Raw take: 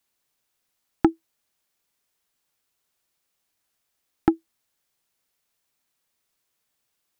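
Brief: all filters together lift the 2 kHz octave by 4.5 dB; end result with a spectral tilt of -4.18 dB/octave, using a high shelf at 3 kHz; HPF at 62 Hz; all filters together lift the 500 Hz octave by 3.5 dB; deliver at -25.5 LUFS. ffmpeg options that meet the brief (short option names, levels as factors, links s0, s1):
-af "highpass=62,equalizer=f=500:t=o:g=7,equalizer=f=2000:t=o:g=7,highshelf=f=3000:g=-5.5,volume=0.794"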